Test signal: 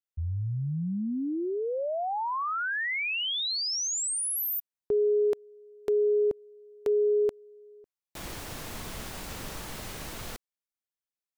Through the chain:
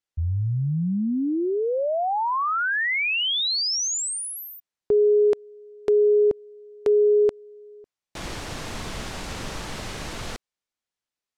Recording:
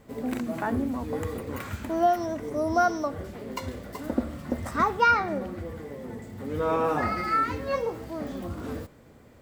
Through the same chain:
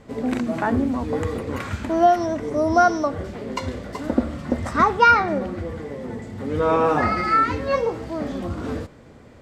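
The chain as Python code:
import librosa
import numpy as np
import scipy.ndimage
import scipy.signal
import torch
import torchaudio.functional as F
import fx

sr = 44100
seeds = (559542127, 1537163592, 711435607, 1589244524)

y = scipy.signal.sosfilt(scipy.signal.butter(2, 7300.0, 'lowpass', fs=sr, output='sos'), x)
y = F.gain(torch.from_numpy(y), 6.5).numpy()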